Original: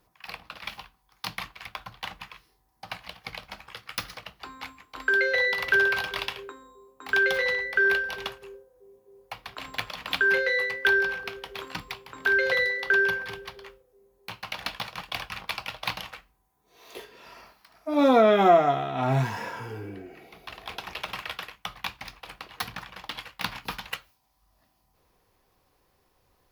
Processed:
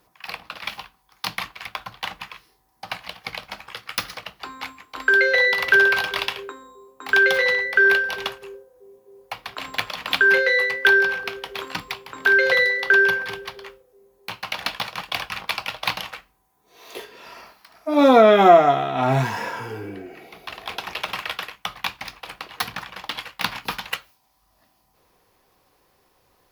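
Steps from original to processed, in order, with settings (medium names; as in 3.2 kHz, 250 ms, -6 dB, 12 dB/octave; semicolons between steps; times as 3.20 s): bass shelf 120 Hz -9 dB; trim +6.5 dB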